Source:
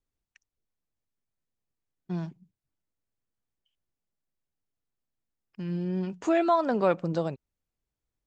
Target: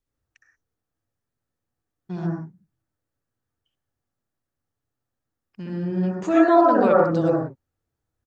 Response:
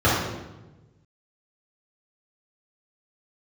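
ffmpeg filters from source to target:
-filter_complex "[0:a]asplit=2[s0][s1];[s1]firequalizer=gain_entry='entry(100,0);entry(190,5);entry(1900,8);entry(2800,-20);entry(5900,4)':delay=0.05:min_phase=1[s2];[1:a]atrim=start_sample=2205,afade=t=out:st=0.18:d=0.01,atrim=end_sample=8379,adelay=62[s3];[s2][s3]afir=irnorm=-1:irlink=0,volume=0.0794[s4];[s0][s4]amix=inputs=2:normalize=0,volume=1.12"

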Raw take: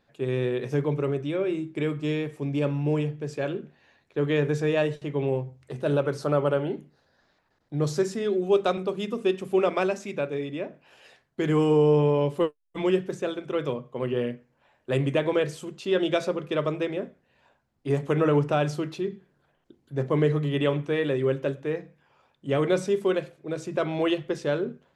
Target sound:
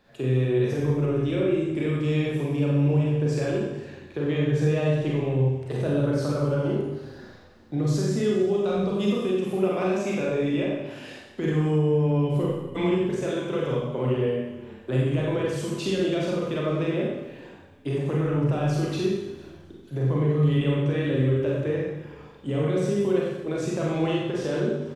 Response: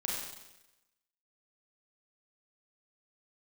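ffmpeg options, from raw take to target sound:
-filter_complex "[0:a]bandreject=f=48.92:t=h:w=4,bandreject=f=97.84:t=h:w=4,bandreject=f=146.76:t=h:w=4,acrossover=split=230[s0][s1];[s1]acompressor=threshold=0.0178:ratio=6[s2];[s0][s2]amix=inputs=2:normalize=0,alimiter=level_in=1.19:limit=0.0631:level=0:latency=1,volume=0.841,areverse,acompressor=mode=upward:threshold=0.00251:ratio=2.5,areverse,asplit=4[s3][s4][s5][s6];[s4]adelay=455,afreqshift=-31,volume=0.0794[s7];[s5]adelay=910,afreqshift=-62,volume=0.0295[s8];[s6]adelay=1365,afreqshift=-93,volume=0.0108[s9];[s3][s7][s8][s9]amix=inputs=4:normalize=0[s10];[1:a]atrim=start_sample=2205[s11];[s10][s11]afir=irnorm=-1:irlink=0,volume=2.11"

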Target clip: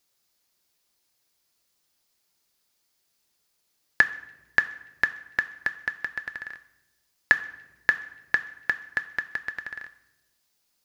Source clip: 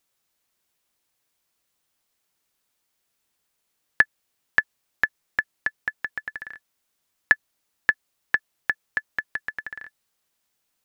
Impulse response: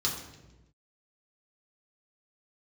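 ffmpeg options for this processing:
-filter_complex "[0:a]asplit=2[s0][s1];[1:a]atrim=start_sample=2205,lowshelf=f=230:g=-7,highshelf=f=2700:g=9.5[s2];[s1][s2]afir=irnorm=-1:irlink=0,volume=0.141[s3];[s0][s3]amix=inputs=2:normalize=0"

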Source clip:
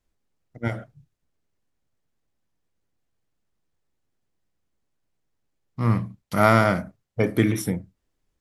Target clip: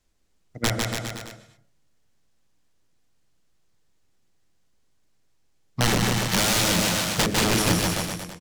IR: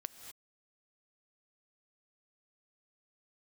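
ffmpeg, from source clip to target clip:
-filter_complex "[0:a]aeval=exprs='(mod(8.41*val(0)+1,2)-1)/8.41':c=same,equalizer=f=8400:t=o:w=2.5:g=8,aecho=1:1:150|285|406.5|515.8|614.3:0.631|0.398|0.251|0.158|0.1,asplit=2[s0][s1];[1:a]atrim=start_sample=2205,lowpass=8100[s2];[s1][s2]afir=irnorm=-1:irlink=0,volume=0.944[s3];[s0][s3]amix=inputs=2:normalize=0,acrossover=split=440[s4][s5];[s5]acompressor=threshold=0.112:ratio=6[s6];[s4][s6]amix=inputs=2:normalize=0"

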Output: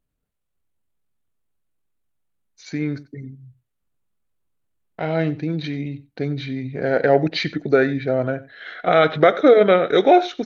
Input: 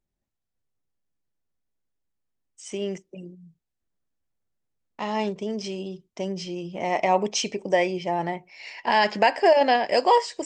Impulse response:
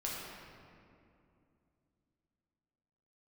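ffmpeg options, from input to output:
-filter_complex "[0:a]equalizer=f=7000:t=o:w=0.56:g=-11,asetrate=33038,aresample=44100,atempo=1.33484,asplit=2[s0][s1];[s1]aecho=0:1:92:0.112[s2];[s0][s2]amix=inputs=2:normalize=0,volume=1.88"

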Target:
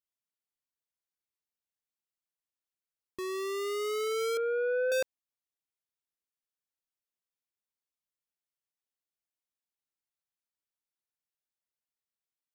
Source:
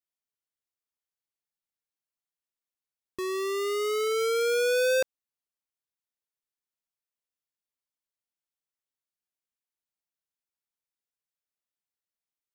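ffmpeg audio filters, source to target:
-filter_complex "[0:a]asettb=1/sr,asplit=3[s0][s1][s2];[s0]atrim=end=4.374[s3];[s1]atrim=start=4.37:end=4.92,asetpts=PTS-STARTPTS,afade=t=in:d=0.004:c=qsin,afade=t=out:st=0.546:d=0.004:c=qsin,lowpass=f=1700:w=0.5412,lowpass=f=1700:w=1.3066[s4];[s2]atrim=start=4.916[s5];[s3][s4]acrossfade=d=0.004:c1=hsin:c2=qsin[s6];[s6][s5]acrossfade=d=0.004:c1=qsin:c2=hsin,volume=0.596"

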